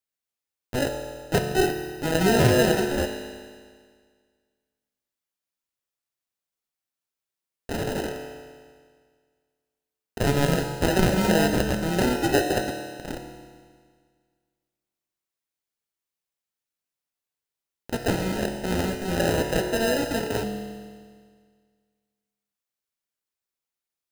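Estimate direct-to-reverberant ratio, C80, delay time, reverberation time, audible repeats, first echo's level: 3.5 dB, 6.5 dB, no echo audible, 1.8 s, no echo audible, no echo audible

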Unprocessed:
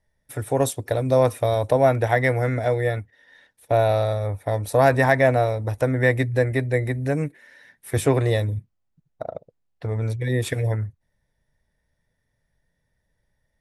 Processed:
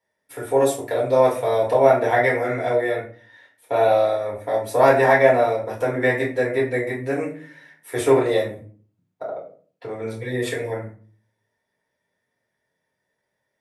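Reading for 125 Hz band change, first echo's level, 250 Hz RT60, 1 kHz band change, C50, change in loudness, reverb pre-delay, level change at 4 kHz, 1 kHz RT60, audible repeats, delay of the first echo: −10.0 dB, no echo audible, 0.60 s, +3.5 dB, 8.0 dB, +1.5 dB, 3 ms, +0.5 dB, 0.40 s, no echo audible, no echo audible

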